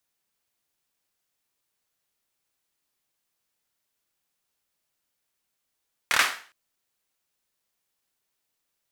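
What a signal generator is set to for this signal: hand clap length 0.41 s, bursts 4, apart 27 ms, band 1.6 kHz, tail 0.41 s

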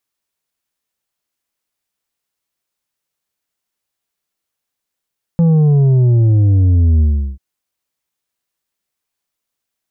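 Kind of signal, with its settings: sub drop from 170 Hz, over 1.99 s, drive 6 dB, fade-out 0.37 s, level -8.5 dB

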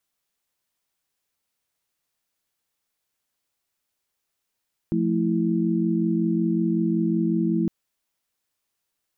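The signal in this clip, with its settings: chord F3/A3/E4 sine, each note -24 dBFS 2.76 s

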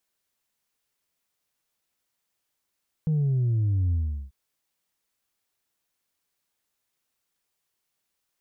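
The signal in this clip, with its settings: sub drop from 160 Hz, over 1.24 s, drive 1.5 dB, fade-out 0.39 s, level -21 dB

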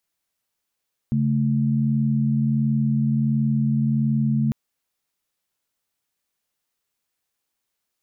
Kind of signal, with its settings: chord C#3/A3 sine, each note -20.5 dBFS 3.40 s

